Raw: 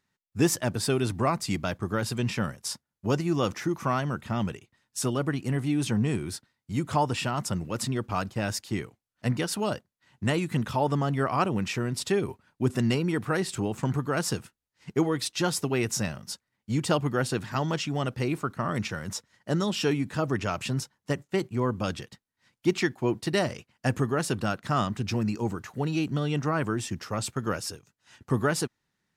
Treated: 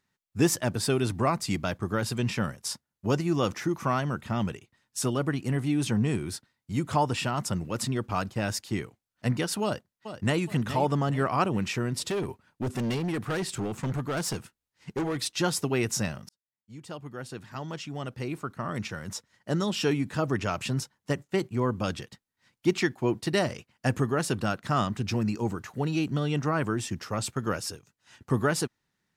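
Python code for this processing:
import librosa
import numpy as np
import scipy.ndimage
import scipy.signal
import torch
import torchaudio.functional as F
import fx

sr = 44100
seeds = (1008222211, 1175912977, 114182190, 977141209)

y = fx.echo_throw(x, sr, start_s=9.63, length_s=0.8, ms=420, feedback_pct=40, wet_db=-10.5)
y = fx.overload_stage(y, sr, gain_db=26.0, at=(12.09, 15.21))
y = fx.edit(y, sr, fx.fade_in_span(start_s=16.29, length_s=3.67), tone=tone)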